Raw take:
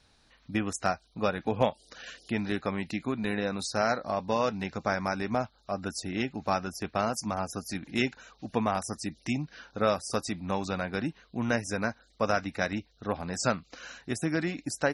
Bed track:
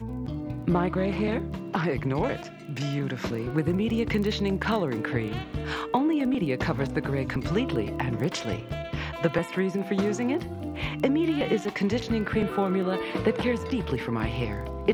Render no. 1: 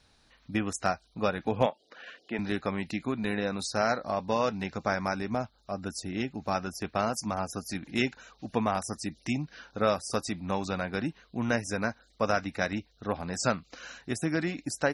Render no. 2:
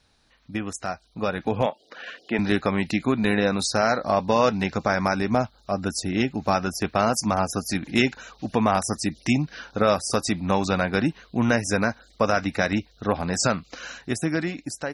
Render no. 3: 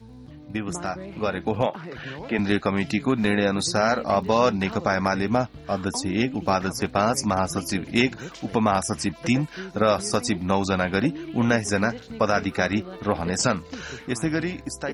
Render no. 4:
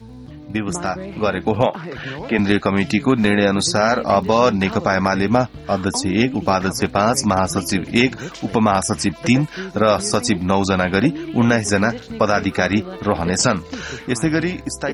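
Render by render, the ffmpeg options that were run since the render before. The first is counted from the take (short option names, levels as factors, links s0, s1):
-filter_complex "[0:a]asettb=1/sr,asplit=3[s0][s1][s2];[s0]atrim=end=1.664[s3];[s1]atrim=start=1.66:end=2.39,asetpts=PTS-STARTPTS,afade=t=in:d=0.004:c=qsin,afade=t=out:st=0.726:d=0.004:c=qsin,highpass=280,lowpass=2700[s4];[s2]atrim=start=2.386[s5];[s3][s4]acrossfade=d=0.004:c1=hsin:c2=qsin[s6];[s6][s5]acrossfade=d=0.004:c1=qsin:c2=hsin,asettb=1/sr,asplit=3[s7][s8][s9];[s7]atrim=end=5.194[s10];[s8]atrim=start=5.19:end=6.55,asetpts=PTS-STARTPTS,afade=t=in:d=0.004:c=qsin,afade=t=out:st=1.356:d=0.004:c=qsin,equalizer=f=1600:w=0.31:g=-3.5[s11];[s9]atrim=start=6.546[s12];[s10][s11]acrossfade=d=0.004:c1=hsin:c2=qsin[s13];[s13][s12]acrossfade=d=0.004:c1=qsin:c2=hsin"
-af "alimiter=limit=0.15:level=0:latency=1:release=80,dynaudnorm=f=410:g=7:m=2.82"
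-filter_complex "[1:a]volume=0.282[s0];[0:a][s0]amix=inputs=2:normalize=0"
-af "volume=2.11,alimiter=limit=0.708:level=0:latency=1"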